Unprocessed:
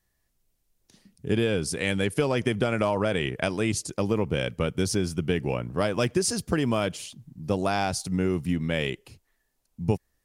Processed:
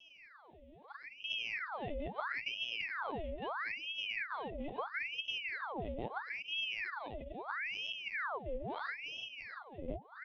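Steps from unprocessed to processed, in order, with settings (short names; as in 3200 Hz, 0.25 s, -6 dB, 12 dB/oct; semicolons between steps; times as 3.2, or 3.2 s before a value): per-bin compression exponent 0.6; vocal tract filter i; low shelf 290 Hz +4.5 dB; resonator 160 Hz, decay 0.27 s, harmonics all, mix 60%; feedback echo 0.341 s, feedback 44%, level -10 dB; in parallel at -6 dB: soft clip -34 dBFS, distortion -10 dB; on the sum: bell 1100 Hz +2.5 dB 0.2 oct; fixed phaser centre 380 Hz, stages 4; on a send at -18 dB: reverb RT60 0.35 s, pre-delay 3 ms; on the sum: compressor 2:1, threshold -55 dBFS, peak gain reduction 14 dB; LPC vocoder at 8 kHz pitch kept; ring modulator with a swept carrier 1600 Hz, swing 85%, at 0.76 Hz; gain +10 dB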